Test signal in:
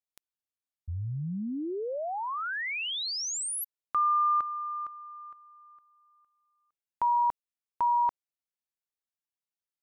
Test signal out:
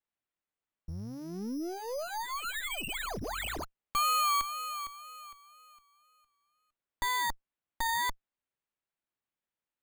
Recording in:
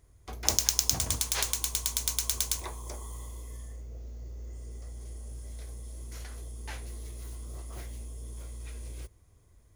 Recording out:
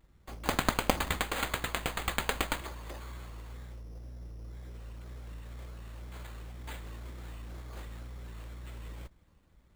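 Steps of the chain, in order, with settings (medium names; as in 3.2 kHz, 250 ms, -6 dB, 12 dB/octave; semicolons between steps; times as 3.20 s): comb filter that takes the minimum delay 3.5 ms; vibrato 2 Hz 78 cents; careless resampling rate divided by 8×, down none, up hold; trim -1.5 dB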